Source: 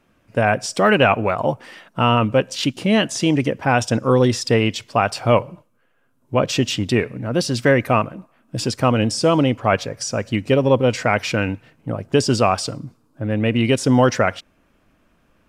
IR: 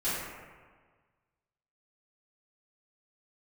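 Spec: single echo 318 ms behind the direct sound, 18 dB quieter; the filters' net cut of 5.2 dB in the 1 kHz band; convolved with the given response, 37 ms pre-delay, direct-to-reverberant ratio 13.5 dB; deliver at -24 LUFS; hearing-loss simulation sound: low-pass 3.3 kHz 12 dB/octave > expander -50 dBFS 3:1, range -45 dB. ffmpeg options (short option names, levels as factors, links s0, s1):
-filter_complex "[0:a]equalizer=f=1000:t=o:g=-7.5,aecho=1:1:318:0.126,asplit=2[s0][s1];[1:a]atrim=start_sample=2205,adelay=37[s2];[s1][s2]afir=irnorm=-1:irlink=0,volume=0.075[s3];[s0][s3]amix=inputs=2:normalize=0,lowpass=3300,agate=range=0.00562:threshold=0.00316:ratio=3,volume=0.668"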